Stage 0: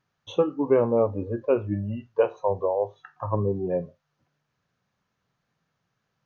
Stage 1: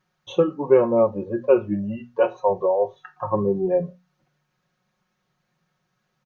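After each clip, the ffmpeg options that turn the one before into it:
-af "bandreject=f=60:t=h:w=6,bandreject=f=120:t=h:w=6,bandreject=f=180:t=h:w=6,bandreject=f=240:t=h:w=6,aecho=1:1:5.5:0.76,volume=1.26"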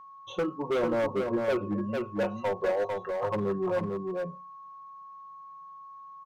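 -filter_complex "[0:a]aeval=exprs='val(0)+0.01*sin(2*PI*1100*n/s)':c=same,asoftclip=type=hard:threshold=0.119,asplit=2[s0][s1];[s1]aecho=0:1:448:0.631[s2];[s0][s2]amix=inputs=2:normalize=0,volume=0.501"

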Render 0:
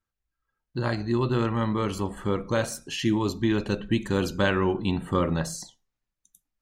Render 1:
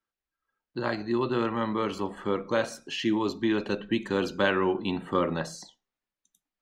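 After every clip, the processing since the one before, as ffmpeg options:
-filter_complex "[0:a]acrossover=split=200 5300:gain=0.178 1 0.224[s0][s1][s2];[s0][s1][s2]amix=inputs=3:normalize=0"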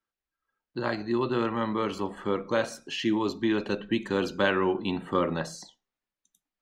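-af anull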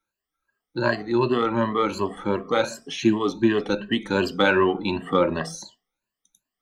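-af "afftfilt=real='re*pow(10,16/40*sin(2*PI*(1.4*log(max(b,1)*sr/1024/100)/log(2)-(2.7)*(pts-256)/sr)))':imag='im*pow(10,16/40*sin(2*PI*(1.4*log(max(b,1)*sr/1024/100)/log(2)-(2.7)*(pts-256)/sr)))':win_size=1024:overlap=0.75,aeval=exprs='0.422*(cos(1*acos(clip(val(0)/0.422,-1,1)))-cos(1*PI/2))+0.00422*(cos(7*acos(clip(val(0)/0.422,-1,1)))-cos(7*PI/2))':c=same,volume=1.41"

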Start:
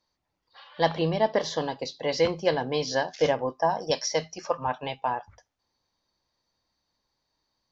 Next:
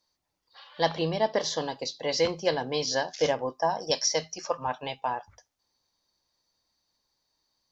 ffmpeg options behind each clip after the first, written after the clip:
-af "bass=f=250:g=-2,treble=f=4000:g=8,volume=0.794"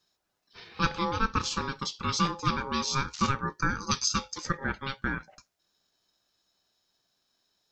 -filter_complex "[0:a]aeval=exprs='val(0)*sin(2*PI*680*n/s)':c=same,asplit=2[s0][s1];[s1]acompressor=threshold=0.0141:ratio=6,volume=0.708[s2];[s0][s2]amix=inputs=2:normalize=0"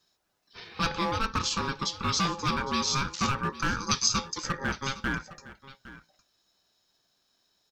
-filter_complex "[0:a]acrossover=split=2600[s0][s1];[s0]asoftclip=type=hard:threshold=0.0501[s2];[s2][s1]amix=inputs=2:normalize=0,aecho=1:1:810:0.141,volume=1.41"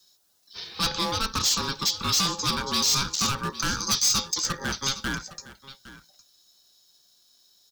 -filter_complex "[0:a]acrossover=split=130|1100[s0][s1][s2];[s2]aexciter=amount=3.5:drive=6.5:freq=3300[s3];[s0][s1][s3]amix=inputs=3:normalize=0,asoftclip=type=hard:threshold=0.119"

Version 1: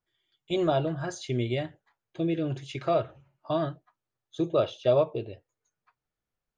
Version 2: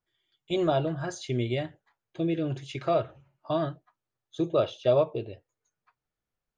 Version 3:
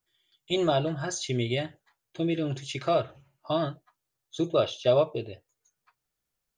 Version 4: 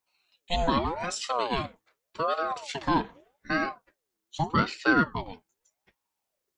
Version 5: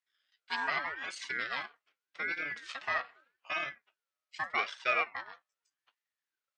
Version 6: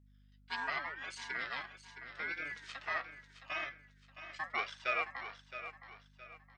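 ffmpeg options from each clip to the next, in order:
-af anull
-af "highshelf=f=3300:g=11"
-af "aeval=exprs='val(0)*sin(2*PI*640*n/s+640*0.5/0.83*sin(2*PI*0.83*n/s))':c=same,volume=1.33"
-af "aeval=exprs='val(0)*sin(2*PI*940*n/s)':c=same,bandpass=f=2200:t=q:w=0.71:csg=0,volume=0.841"
-af "aeval=exprs='val(0)+0.00126*(sin(2*PI*50*n/s)+sin(2*PI*2*50*n/s)/2+sin(2*PI*3*50*n/s)/3+sin(2*PI*4*50*n/s)/4+sin(2*PI*5*50*n/s)/5)':c=same,aecho=1:1:667|1334|2001|2668:0.282|0.101|0.0365|0.0131,volume=0.596"

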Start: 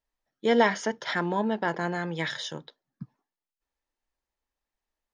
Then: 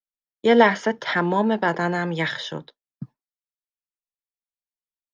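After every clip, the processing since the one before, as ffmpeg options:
-filter_complex "[0:a]agate=range=0.0224:threshold=0.01:ratio=3:detection=peak,acrossover=split=170|640|4100[s0][s1][s2][s3];[s3]acompressor=threshold=0.00224:ratio=6[s4];[s0][s1][s2][s4]amix=inputs=4:normalize=0,volume=2.11"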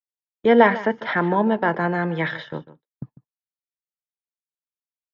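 -af "lowpass=2400,agate=range=0.112:threshold=0.0158:ratio=16:detection=peak,aecho=1:1:148:0.15,volume=1.12"

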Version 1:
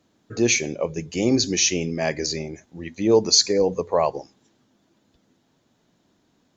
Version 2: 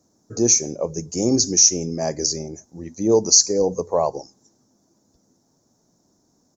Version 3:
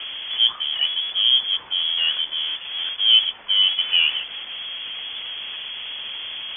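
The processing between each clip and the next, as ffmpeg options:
-filter_complex "[0:a]firequalizer=gain_entry='entry(820,0);entry(1800,-12);entry(3000,-20);entry(5600,11);entry(8200,4)':delay=0.05:min_phase=1,asplit=2[s0][s1];[s1]alimiter=limit=0.447:level=0:latency=1:release=275,volume=1[s2];[s0][s2]amix=inputs=2:normalize=0,volume=0.531"
-af "aeval=exprs='val(0)+0.5*0.0631*sgn(val(0))':c=same,lowpass=f=3000:t=q:w=0.5098,lowpass=f=3000:t=q:w=0.6013,lowpass=f=3000:t=q:w=0.9,lowpass=f=3000:t=q:w=2.563,afreqshift=-3500"

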